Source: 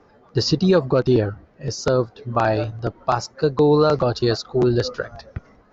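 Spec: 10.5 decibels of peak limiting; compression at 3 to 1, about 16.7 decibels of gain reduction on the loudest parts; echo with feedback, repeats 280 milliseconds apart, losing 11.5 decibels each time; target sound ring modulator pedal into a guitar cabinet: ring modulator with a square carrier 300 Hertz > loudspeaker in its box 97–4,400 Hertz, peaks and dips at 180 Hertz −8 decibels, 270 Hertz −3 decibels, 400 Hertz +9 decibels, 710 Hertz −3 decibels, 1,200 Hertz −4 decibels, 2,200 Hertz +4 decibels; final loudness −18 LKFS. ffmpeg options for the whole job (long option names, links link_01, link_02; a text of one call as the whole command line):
ffmpeg -i in.wav -af "acompressor=threshold=-36dB:ratio=3,alimiter=level_in=5dB:limit=-24dB:level=0:latency=1,volume=-5dB,aecho=1:1:280|560|840:0.266|0.0718|0.0194,aeval=exprs='val(0)*sgn(sin(2*PI*300*n/s))':channel_layout=same,highpass=97,equalizer=frequency=180:width_type=q:width=4:gain=-8,equalizer=frequency=270:width_type=q:width=4:gain=-3,equalizer=frequency=400:width_type=q:width=4:gain=9,equalizer=frequency=710:width_type=q:width=4:gain=-3,equalizer=frequency=1200:width_type=q:width=4:gain=-4,equalizer=frequency=2200:width_type=q:width=4:gain=4,lowpass=frequency=4400:width=0.5412,lowpass=frequency=4400:width=1.3066,volume=20.5dB" out.wav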